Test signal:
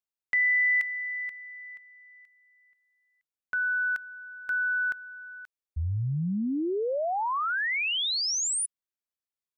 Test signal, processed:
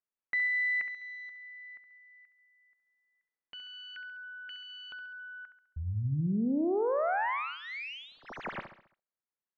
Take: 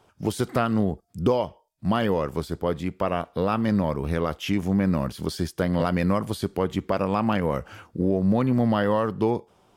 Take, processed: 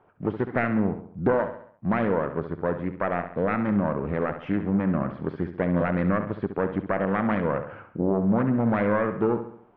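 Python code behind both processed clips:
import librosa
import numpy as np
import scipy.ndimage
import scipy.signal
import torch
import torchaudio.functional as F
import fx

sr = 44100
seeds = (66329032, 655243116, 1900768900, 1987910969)

y = fx.self_delay(x, sr, depth_ms=0.32)
y = scipy.signal.sosfilt(scipy.signal.butter(4, 2000.0, 'lowpass', fs=sr, output='sos'), y)
y = fx.peak_eq(y, sr, hz=60.0, db=-9.5, octaves=1.4)
y = fx.echo_feedback(y, sr, ms=68, feedback_pct=47, wet_db=-10)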